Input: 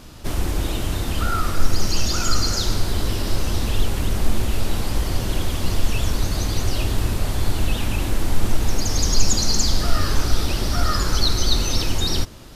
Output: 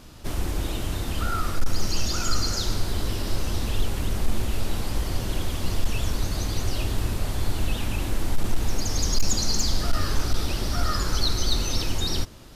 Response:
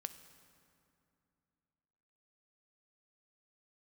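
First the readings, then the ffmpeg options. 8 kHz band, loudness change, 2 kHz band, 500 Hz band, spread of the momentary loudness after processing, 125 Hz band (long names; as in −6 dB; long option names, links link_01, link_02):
−5.0 dB, −4.5 dB, −4.5 dB, −4.5 dB, 5 LU, −4.5 dB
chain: -af "volume=8dB,asoftclip=hard,volume=-8dB,volume=-4.5dB"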